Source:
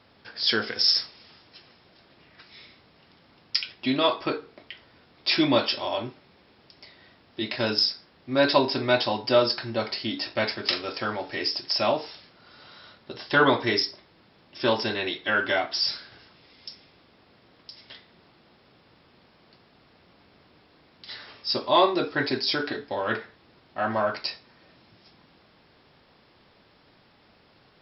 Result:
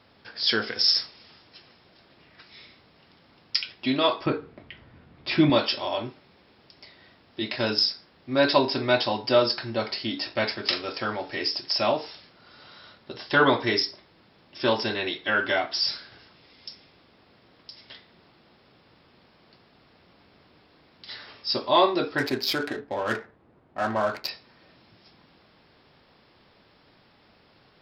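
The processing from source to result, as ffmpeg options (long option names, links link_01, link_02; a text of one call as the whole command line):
ffmpeg -i in.wav -filter_complex "[0:a]asettb=1/sr,asplit=3[link_01][link_02][link_03];[link_01]atrim=end=4.264[link_04];[link_02]atrim=start=4.26:end=5.5,asetpts=PTS-STARTPTS,afade=type=in:duration=0.004:curve=qsin,afade=type=out:start_time=1.236:duration=0.004:curve=qsin,bass=frequency=250:gain=11,treble=frequency=4000:gain=-15[link_05];[link_03]atrim=start=5.496[link_06];[link_04][link_05]acrossfade=duration=0.004:curve1=hsin:curve2=qsin[link_07];[link_07][link_06]acrossfade=duration=0.004:curve1=qsin:curve2=hsin,asettb=1/sr,asplit=3[link_08][link_09][link_10];[link_08]atrim=end=22.184[link_11];[link_09]atrim=start=22.18:end=24.29,asetpts=PTS-STARTPTS,afade=type=in:duration=0.004:curve=qsin,afade=type=out:start_time=2.106:duration=0.004:curve=qsin,adynamicsmooth=sensitivity=4.5:basefreq=1300[link_12];[link_10]atrim=start=24.286[link_13];[link_11][link_12]acrossfade=duration=0.004:curve1=hsin:curve2=qsin[link_14];[link_14][link_13]acrossfade=duration=0.004:curve1=qsin:curve2=hsin" out.wav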